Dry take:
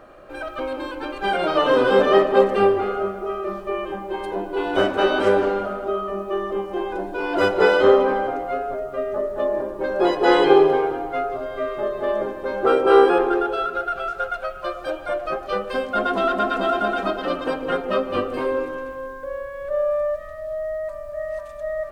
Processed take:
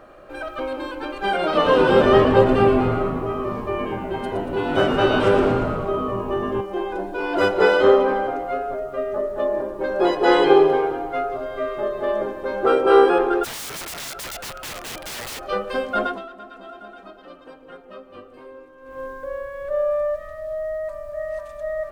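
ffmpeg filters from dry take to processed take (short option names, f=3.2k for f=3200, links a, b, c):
-filter_complex "[0:a]asettb=1/sr,asplit=3[a][b][c];[a]atrim=end=1.414[d];[b]atrim=start=1.41:end=6.61,asetpts=PTS-STARTPTS,afade=t=in:d=0.004:c=qsin,afade=t=out:st=5.196:d=0.004:c=qsin,asplit=9[e][f][g][h][i][j][k][l][m];[f]adelay=117,afreqshift=-140,volume=-6dB[n];[g]adelay=234,afreqshift=-280,volume=-10.4dB[o];[h]adelay=351,afreqshift=-420,volume=-14.9dB[p];[i]adelay=468,afreqshift=-560,volume=-19.3dB[q];[j]adelay=585,afreqshift=-700,volume=-23.7dB[r];[k]adelay=702,afreqshift=-840,volume=-28.2dB[s];[l]adelay=819,afreqshift=-980,volume=-32.6dB[t];[m]adelay=936,afreqshift=-1120,volume=-37.1dB[u];[e][n][o][p][q][r][s][t][u]amix=inputs=9:normalize=0,atrim=end_sample=229320[v];[c]atrim=start=6.606[w];[d][v]acrossfade=d=0.004:c1=hsin:c2=qsin[x];[x][w]acrossfade=d=0.004:c1=qsin:c2=hsin,asplit=3[y][z][aa];[y]afade=t=out:st=13.43:d=0.02[ab];[z]aeval=exprs='(mod(23.7*val(0)+1,2)-1)/23.7':c=same,afade=t=in:st=13.43:d=0.02,afade=t=out:st=15.38:d=0.02[ac];[aa]afade=t=in:st=15.38:d=0.02[ad];[ab][ac][ad]amix=inputs=3:normalize=0,asplit=3[ae][af][ag];[ae]atrim=end=16.29,asetpts=PTS-STARTPTS,afade=t=out:st=16.04:d=0.25:c=qua:silence=0.11885[ah];[af]atrim=start=16.29:end=18.75,asetpts=PTS-STARTPTS,volume=-18.5dB[ai];[ag]atrim=start=18.75,asetpts=PTS-STARTPTS,afade=t=in:d=0.25:c=qua:silence=0.11885[aj];[ah][ai][aj]concat=n=3:v=0:a=1"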